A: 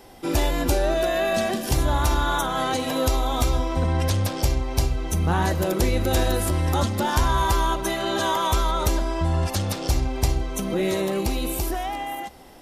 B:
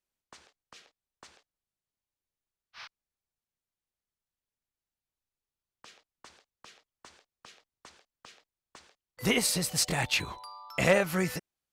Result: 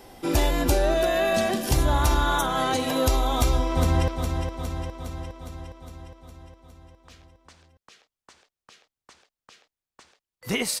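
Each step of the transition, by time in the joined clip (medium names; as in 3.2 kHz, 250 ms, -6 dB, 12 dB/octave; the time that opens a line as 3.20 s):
A
3.36–4.08 s: echo throw 410 ms, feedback 65%, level -6.5 dB
4.08 s: go over to B from 2.84 s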